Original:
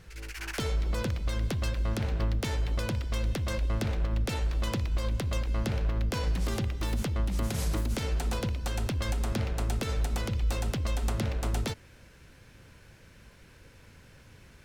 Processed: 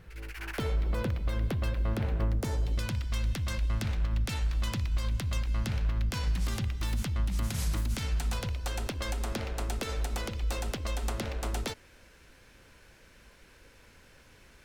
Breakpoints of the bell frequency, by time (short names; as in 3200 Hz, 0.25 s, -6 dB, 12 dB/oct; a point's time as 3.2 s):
bell -10 dB 1.6 oct
2.04 s 6500 Hz
2.65 s 2100 Hz
2.86 s 460 Hz
8.25 s 460 Hz
8.83 s 120 Hz